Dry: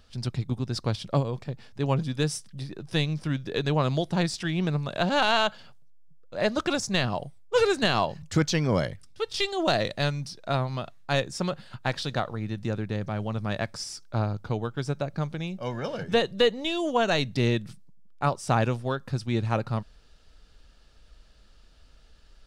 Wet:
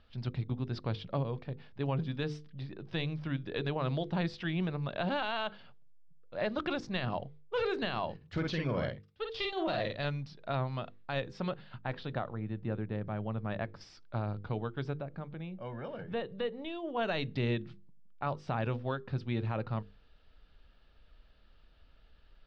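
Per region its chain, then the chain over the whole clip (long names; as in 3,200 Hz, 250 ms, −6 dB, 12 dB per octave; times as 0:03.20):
0:08.16–0:10.05: noise gate −38 dBFS, range −6 dB + tube saturation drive 15 dB, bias 0.35 + double-tracking delay 49 ms −4 dB
0:11.81–0:13.81: high-shelf EQ 3,100 Hz −11.5 dB + one half of a high-frequency compander decoder only
0:14.97–0:16.97: high-shelf EQ 3,300 Hz −11.5 dB + downward compressor 1.5 to 1, threshold −37 dBFS
whole clip: low-pass filter 3,700 Hz 24 dB per octave; mains-hum notches 50/100/150/200/250/300/350/400/450/500 Hz; brickwall limiter −18.5 dBFS; level −5 dB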